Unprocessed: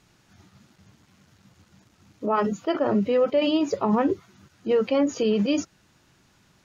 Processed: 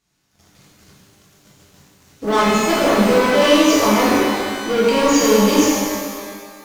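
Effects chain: AGC gain up to 5 dB; sample leveller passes 3; high shelf 4100 Hz +9 dB; shimmer reverb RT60 1.8 s, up +12 st, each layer -8 dB, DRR -7.5 dB; gain -10.5 dB

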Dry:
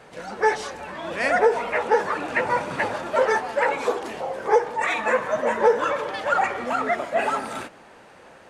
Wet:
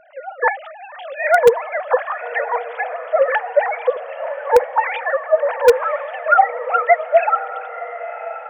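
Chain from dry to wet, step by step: sine-wave speech; diffused feedback echo 1.04 s, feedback 45%, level -13.5 dB; in parallel at -11 dB: wrapped overs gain 6.5 dB; on the sum: gain +3 dB

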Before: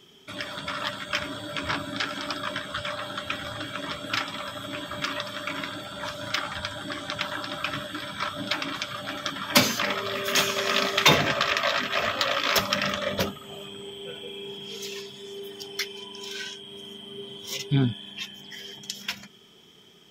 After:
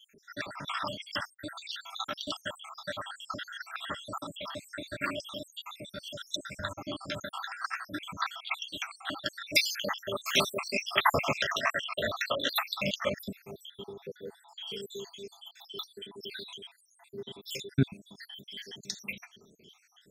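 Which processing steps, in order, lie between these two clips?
random spectral dropouts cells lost 76%

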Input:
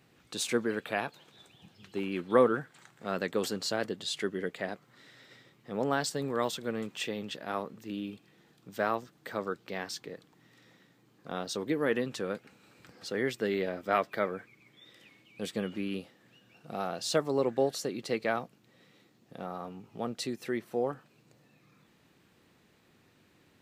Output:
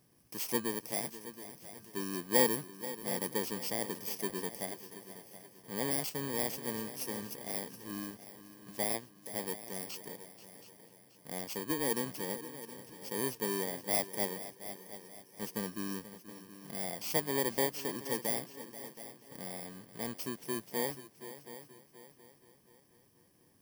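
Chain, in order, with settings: FFT order left unsorted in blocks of 32 samples; multi-head echo 0.241 s, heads second and third, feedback 42%, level -14.5 dB; gain -4 dB

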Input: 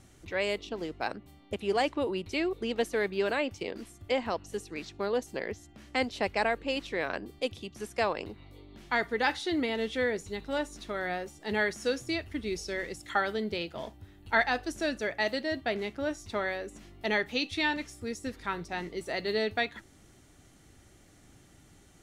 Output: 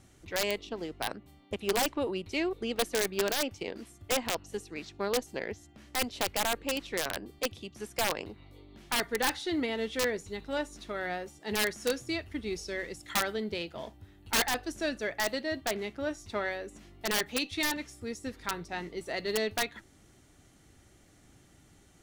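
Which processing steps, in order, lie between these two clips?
added harmonics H 2 -44 dB, 4 -29 dB, 7 -31 dB, 8 -43 dB, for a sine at -13.5 dBFS; wrapped overs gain 19 dB

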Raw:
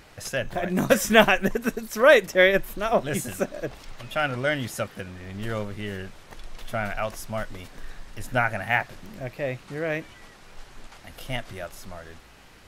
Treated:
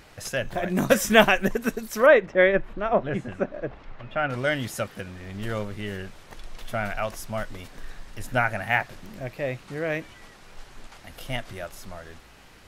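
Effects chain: 2.06–4.3 LPF 2000 Hz 12 dB/oct

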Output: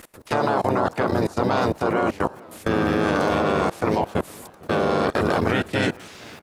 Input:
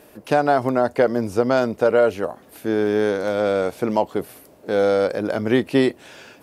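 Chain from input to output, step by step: spectral limiter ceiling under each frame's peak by 14 dB; dynamic EQ 900 Hz, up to +6 dB, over -35 dBFS, Q 2.6; harmoniser -5 st -3 dB, -4 st -2 dB, -3 st -12 dB; bit-crush 10-bit; level quantiser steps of 23 dB; warbling echo 0.46 s, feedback 48%, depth 189 cents, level -23.5 dB; gain +2.5 dB

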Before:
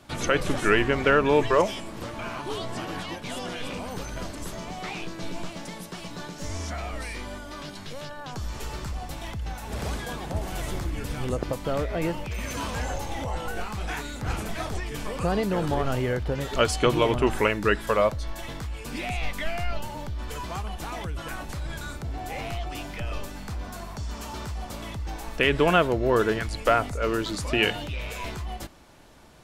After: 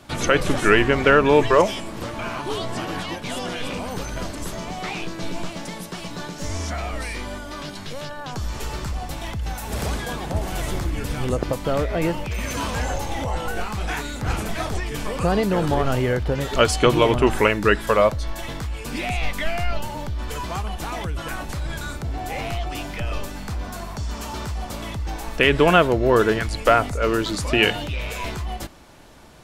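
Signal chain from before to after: 9.43–9.86 high shelf 7700 Hz +8 dB; gain +5 dB

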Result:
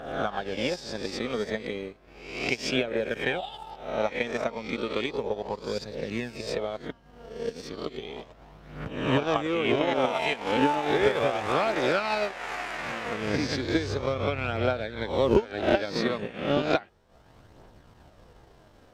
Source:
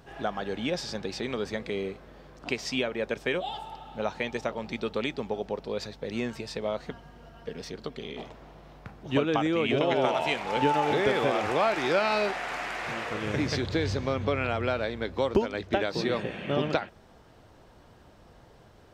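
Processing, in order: spectral swells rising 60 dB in 0.84 s; phaser 0.34 Hz, delay 4.7 ms, feedback 30%; transient shaper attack +8 dB, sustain -9 dB; gain -3 dB

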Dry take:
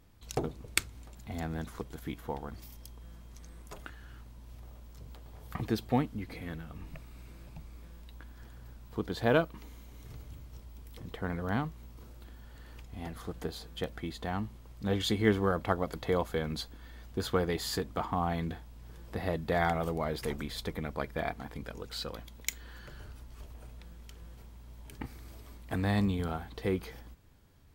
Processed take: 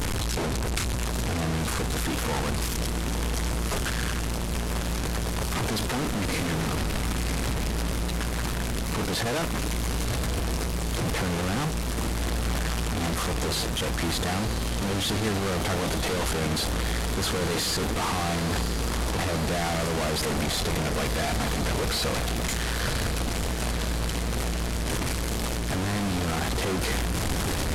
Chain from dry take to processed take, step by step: delta modulation 64 kbps, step -16 dBFS; diffused feedback echo 0.991 s, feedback 69%, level -9 dB; gain -5 dB

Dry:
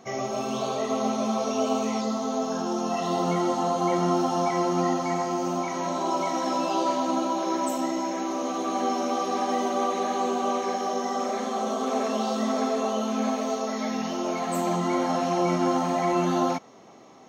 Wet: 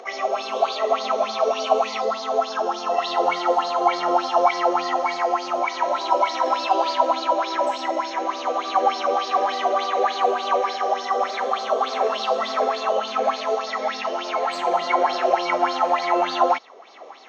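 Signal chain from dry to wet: weighting filter A; spectral repair 14.65–15.34, 350–770 Hz; three-band isolator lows -18 dB, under 240 Hz, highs -18 dB, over 5600 Hz; upward compressor, threshold -43 dBFS; LFO bell 3.4 Hz 450–4800 Hz +17 dB

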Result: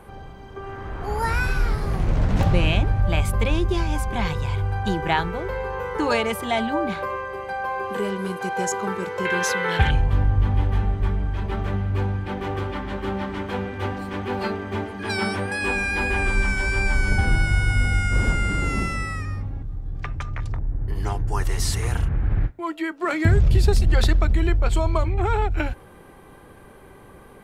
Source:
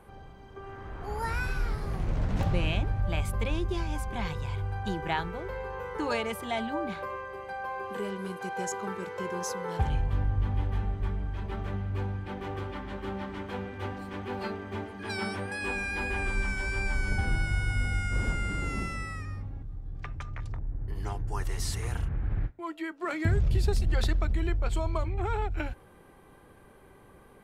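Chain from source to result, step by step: 9.25–9.91 band shelf 2400 Hz +12 dB; gain +8.5 dB

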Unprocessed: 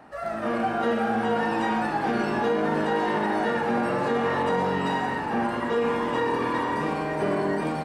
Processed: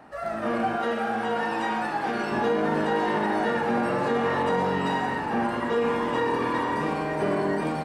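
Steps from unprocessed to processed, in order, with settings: 0.76–2.32 low shelf 360 Hz -7.5 dB

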